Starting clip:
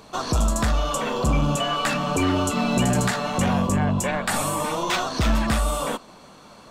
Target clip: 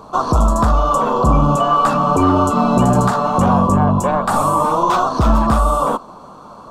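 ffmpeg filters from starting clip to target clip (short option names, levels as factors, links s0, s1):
-af "highshelf=f=1500:t=q:w=3:g=-9,volume=2.24"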